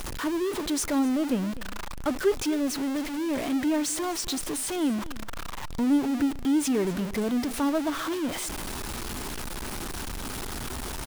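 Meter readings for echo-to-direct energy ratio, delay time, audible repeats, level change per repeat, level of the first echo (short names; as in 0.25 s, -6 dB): -18.5 dB, 0.253 s, 1, no steady repeat, -18.5 dB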